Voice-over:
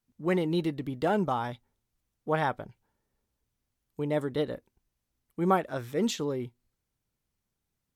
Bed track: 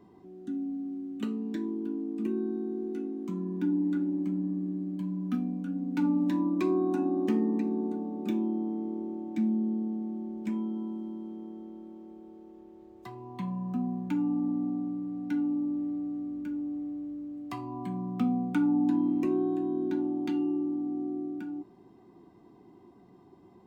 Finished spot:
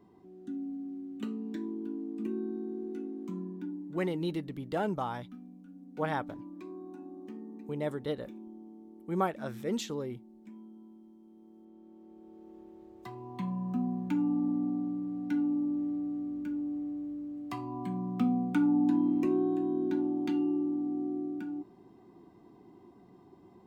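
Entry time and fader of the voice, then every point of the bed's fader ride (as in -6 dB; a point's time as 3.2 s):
3.70 s, -5.0 dB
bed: 3.38 s -4 dB
3.98 s -17.5 dB
11.18 s -17.5 dB
12.55 s -0.5 dB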